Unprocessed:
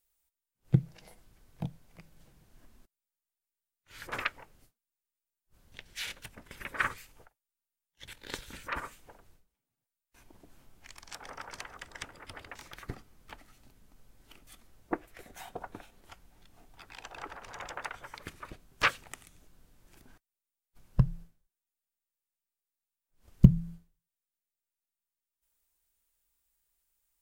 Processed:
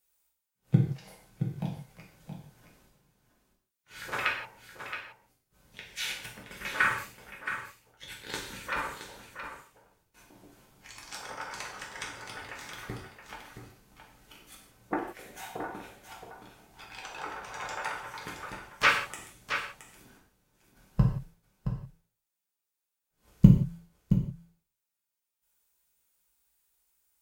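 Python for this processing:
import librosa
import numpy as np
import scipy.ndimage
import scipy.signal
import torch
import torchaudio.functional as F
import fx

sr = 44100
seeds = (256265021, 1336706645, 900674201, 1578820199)

y = fx.highpass(x, sr, hz=90.0, slope=6)
y = y + 10.0 ** (-9.0 / 20.0) * np.pad(y, (int(671 * sr / 1000.0), 0))[:len(y)]
y = fx.rev_gated(y, sr, seeds[0], gate_ms=200, shape='falling', drr_db=-3.0)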